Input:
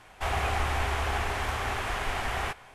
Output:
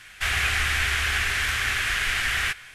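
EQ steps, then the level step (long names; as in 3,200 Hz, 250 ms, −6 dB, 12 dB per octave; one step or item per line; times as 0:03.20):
drawn EQ curve 120 Hz 0 dB, 890 Hz −11 dB, 1,600 Hz +11 dB
0.0 dB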